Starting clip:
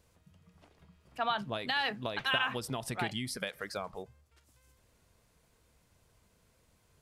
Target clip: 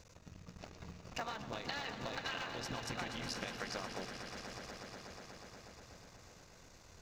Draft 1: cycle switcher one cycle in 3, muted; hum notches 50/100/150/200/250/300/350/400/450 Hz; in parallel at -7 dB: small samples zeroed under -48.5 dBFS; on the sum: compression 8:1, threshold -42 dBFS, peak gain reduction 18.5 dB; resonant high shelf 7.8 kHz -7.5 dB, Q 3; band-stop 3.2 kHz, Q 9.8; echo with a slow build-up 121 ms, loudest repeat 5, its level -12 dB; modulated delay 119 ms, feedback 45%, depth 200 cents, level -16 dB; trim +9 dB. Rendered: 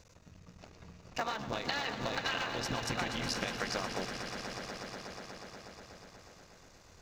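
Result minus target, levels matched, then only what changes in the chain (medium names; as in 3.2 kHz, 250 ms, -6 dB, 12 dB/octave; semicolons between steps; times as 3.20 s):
compression: peak gain reduction -6.5 dB; small samples zeroed: distortion +8 dB
change: small samples zeroed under -58 dBFS; change: compression 8:1, threshold -49.5 dBFS, peak gain reduction 25 dB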